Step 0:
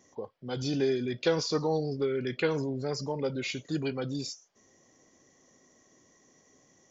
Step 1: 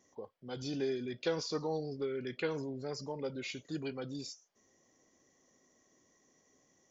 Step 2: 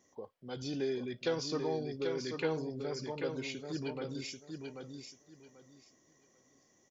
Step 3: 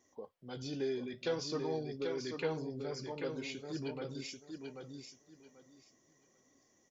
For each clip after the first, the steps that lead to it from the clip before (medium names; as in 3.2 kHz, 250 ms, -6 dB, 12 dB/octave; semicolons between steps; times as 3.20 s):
peaking EQ 130 Hz -3 dB 0.77 oct; trim -7 dB
feedback delay 788 ms, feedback 21%, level -5.5 dB
flange 0.45 Hz, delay 2.5 ms, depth 9.7 ms, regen -59%; trim +2 dB